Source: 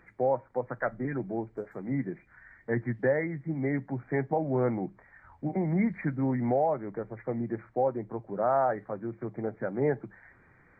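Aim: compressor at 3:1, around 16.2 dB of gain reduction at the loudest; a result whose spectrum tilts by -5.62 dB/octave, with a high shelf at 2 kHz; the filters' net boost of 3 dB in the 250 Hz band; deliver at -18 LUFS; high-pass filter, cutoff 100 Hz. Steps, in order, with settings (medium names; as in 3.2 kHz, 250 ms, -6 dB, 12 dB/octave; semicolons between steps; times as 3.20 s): high-pass 100 Hz; peaking EQ 250 Hz +4 dB; treble shelf 2 kHz -6 dB; compression 3:1, threshold -43 dBFS; trim +25.5 dB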